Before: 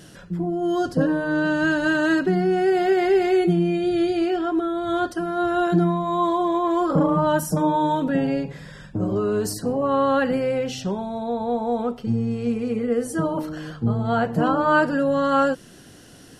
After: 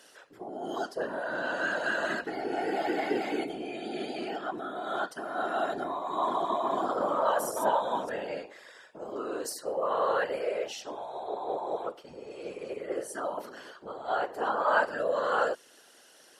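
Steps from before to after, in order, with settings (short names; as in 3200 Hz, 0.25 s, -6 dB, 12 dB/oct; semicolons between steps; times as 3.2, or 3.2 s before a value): 5.79–8.14 reverse delay 0.288 s, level -3.5 dB; HPF 450 Hz 24 dB/oct; whisperiser; gain -6.5 dB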